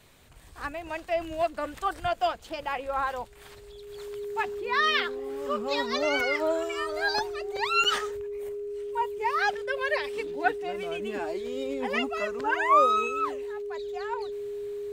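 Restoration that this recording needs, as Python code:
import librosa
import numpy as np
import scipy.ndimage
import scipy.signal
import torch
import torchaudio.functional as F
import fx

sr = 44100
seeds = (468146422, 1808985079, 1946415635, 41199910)

y = fx.notch(x, sr, hz=410.0, q=30.0)
y = fx.fix_interpolate(y, sr, at_s=(7.84,), length_ms=6.1)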